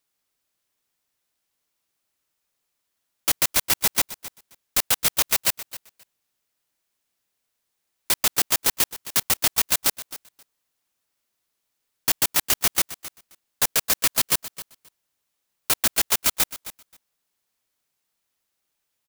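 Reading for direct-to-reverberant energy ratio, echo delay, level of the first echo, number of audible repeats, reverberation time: no reverb, 265 ms, -15.5 dB, 2, no reverb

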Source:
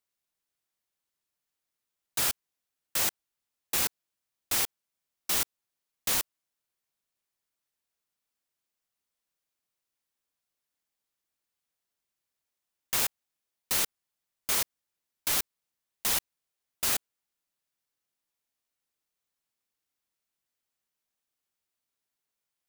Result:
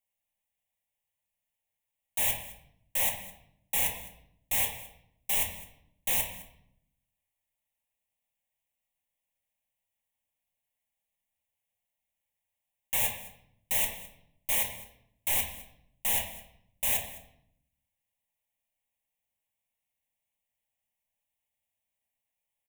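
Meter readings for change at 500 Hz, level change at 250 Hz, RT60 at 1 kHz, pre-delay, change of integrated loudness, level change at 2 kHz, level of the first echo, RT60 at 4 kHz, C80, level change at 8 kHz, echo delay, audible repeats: +0.5 dB, -3.0 dB, 0.70 s, 4 ms, 0.0 dB, +0.5 dB, -18.5 dB, 0.65 s, 9.5 dB, -2.0 dB, 210 ms, 1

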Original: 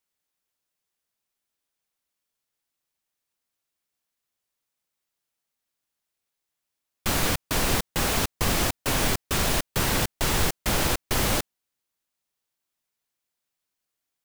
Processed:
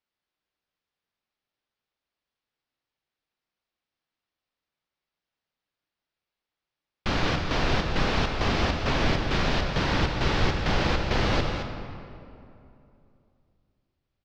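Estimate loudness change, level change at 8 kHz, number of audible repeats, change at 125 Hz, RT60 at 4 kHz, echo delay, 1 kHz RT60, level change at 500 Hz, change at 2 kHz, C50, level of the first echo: -1.5 dB, -16.0 dB, 1, +2.5 dB, 1.6 s, 219 ms, 2.6 s, +1.5 dB, +0.5 dB, 3.5 dB, -8.0 dB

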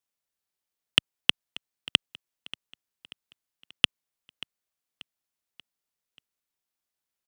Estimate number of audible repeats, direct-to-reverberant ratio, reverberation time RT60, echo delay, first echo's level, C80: 3, no reverb, no reverb, 585 ms, -19.5 dB, no reverb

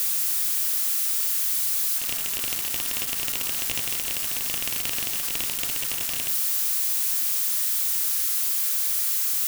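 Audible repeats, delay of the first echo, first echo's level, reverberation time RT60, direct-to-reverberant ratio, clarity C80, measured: no echo, no echo, no echo, 0.85 s, 6.5 dB, 14.5 dB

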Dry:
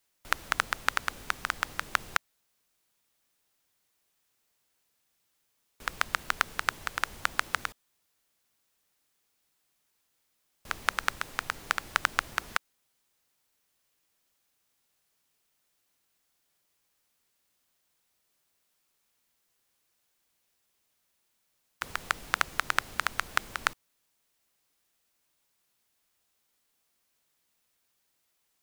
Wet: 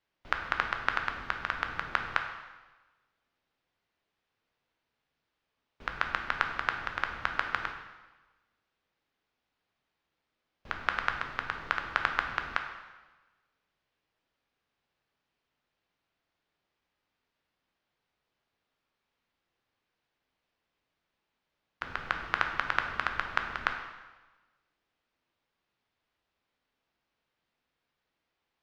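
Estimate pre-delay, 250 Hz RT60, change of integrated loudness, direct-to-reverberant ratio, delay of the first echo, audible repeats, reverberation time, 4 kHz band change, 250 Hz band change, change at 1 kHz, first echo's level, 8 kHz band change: 6 ms, 1.2 s, -1.0 dB, 4.0 dB, no echo, no echo, 1.2 s, -5.0 dB, +1.0 dB, 0.0 dB, no echo, under -15 dB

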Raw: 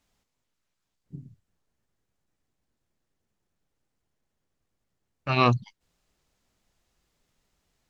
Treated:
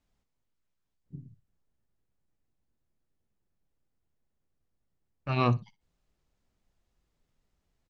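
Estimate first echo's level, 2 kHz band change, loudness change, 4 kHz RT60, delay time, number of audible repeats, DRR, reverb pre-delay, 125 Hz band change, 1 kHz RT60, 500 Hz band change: -19.5 dB, -8.5 dB, -5.0 dB, no reverb, 61 ms, 1, no reverb, no reverb, -2.0 dB, no reverb, -5.0 dB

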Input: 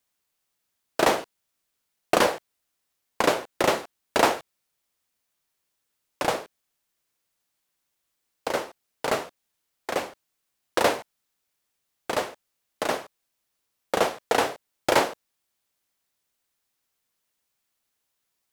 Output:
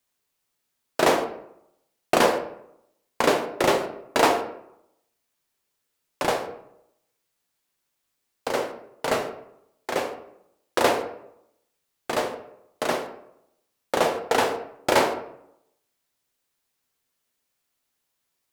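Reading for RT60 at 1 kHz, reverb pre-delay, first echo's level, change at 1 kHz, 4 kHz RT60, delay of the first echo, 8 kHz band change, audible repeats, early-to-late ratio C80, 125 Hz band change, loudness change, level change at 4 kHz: 0.75 s, 6 ms, no echo, +1.5 dB, 0.45 s, no echo, +0.5 dB, no echo, 12.0 dB, +2.0 dB, +1.5 dB, +0.5 dB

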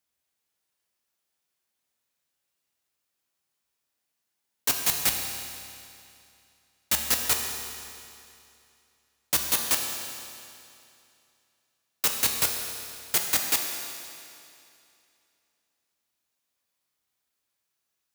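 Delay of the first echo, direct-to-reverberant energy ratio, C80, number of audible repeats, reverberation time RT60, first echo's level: no echo, 2.0 dB, 4.5 dB, no echo, 2.6 s, no echo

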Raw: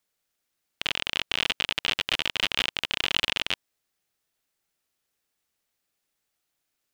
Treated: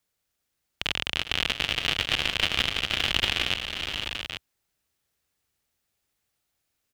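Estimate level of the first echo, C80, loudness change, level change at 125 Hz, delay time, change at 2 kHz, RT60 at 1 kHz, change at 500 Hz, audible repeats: -16.5 dB, no reverb, +0.5 dB, +8.5 dB, 318 ms, +1.5 dB, no reverb, +2.0 dB, 5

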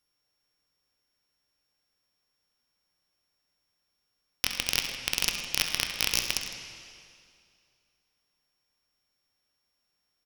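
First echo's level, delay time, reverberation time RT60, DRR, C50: -12.0 dB, 67 ms, 2.3 s, 3.0 dB, 4.0 dB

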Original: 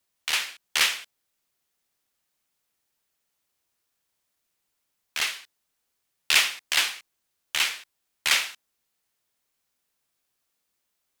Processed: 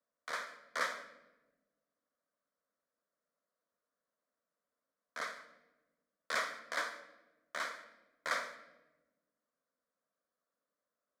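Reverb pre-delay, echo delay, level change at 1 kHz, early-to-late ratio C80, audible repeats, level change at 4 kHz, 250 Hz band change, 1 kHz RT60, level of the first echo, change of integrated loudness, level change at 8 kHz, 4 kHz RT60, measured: 3 ms, no echo, -4.0 dB, 13.5 dB, no echo, -22.5 dB, -5.0 dB, 0.90 s, no echo, -15.5 dB, -21.0 dB, 0.75 s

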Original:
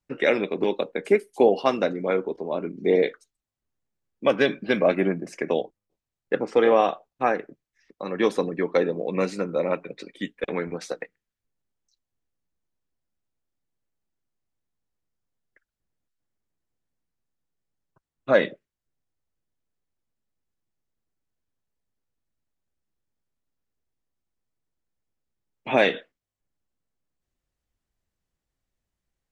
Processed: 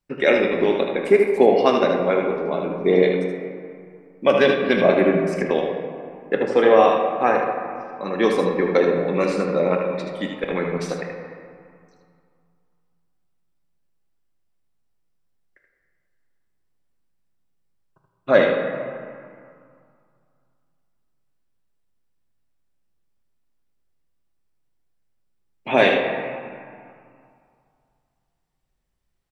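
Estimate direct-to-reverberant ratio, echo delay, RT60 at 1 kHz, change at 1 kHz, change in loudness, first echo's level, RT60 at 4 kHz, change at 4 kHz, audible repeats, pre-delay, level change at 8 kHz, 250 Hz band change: 0.5 dB, 77 ms, 2.6 s, +5.5 dB, +4.5 dB, -6.5 dB, 1.2 s, +4.5 dB, 1, 3 ms, no reading, +5.0 dB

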